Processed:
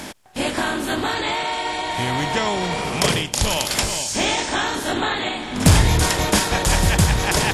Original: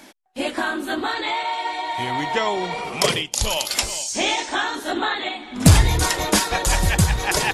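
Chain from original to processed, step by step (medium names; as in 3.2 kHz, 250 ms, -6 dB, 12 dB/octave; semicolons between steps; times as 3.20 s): spectral levelling over time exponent 0.6; trim -3 dB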